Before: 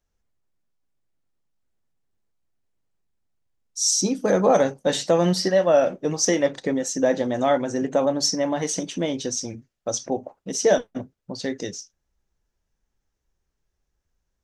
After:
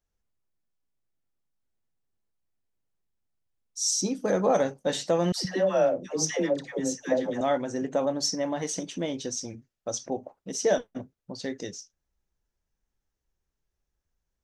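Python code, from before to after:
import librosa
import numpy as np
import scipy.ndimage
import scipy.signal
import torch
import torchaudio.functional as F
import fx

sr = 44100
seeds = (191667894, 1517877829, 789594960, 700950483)

y = fx.dispersion(x, sr, late='lows', ms=131.0, hz=660.0, at=(5.32, 7.41))
y = y * 10.0 ** (-5.5 / 20.0)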